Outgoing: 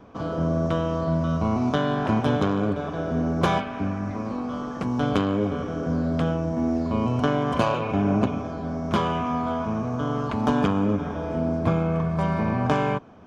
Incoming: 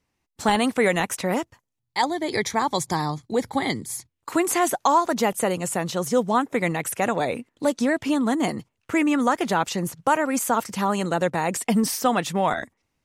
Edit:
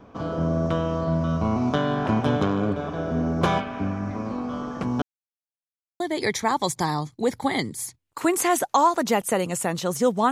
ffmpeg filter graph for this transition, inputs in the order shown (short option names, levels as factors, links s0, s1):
-filter_complex "[0:a]apad=whole_dur=10.31,atrim=end=10.31,asplit=2[s0][s1];[s0]atrim=end=5.02,asetpts=PTS-STARTPTS,afade=t=out:st=5.016:d=0.004:c=hsin[s2];[s1]atrim=start=5.02:end=6,asetpts=PTS-STARTPTS,volume=0[s3];[1:a]atrim=start=2.11:end=6.42,asetpts=PTS-STARTPTS,afade=t=in:d=0.004:c=hsin[s4];[s2][s3][s4]concat=n=3:v=0:a=1"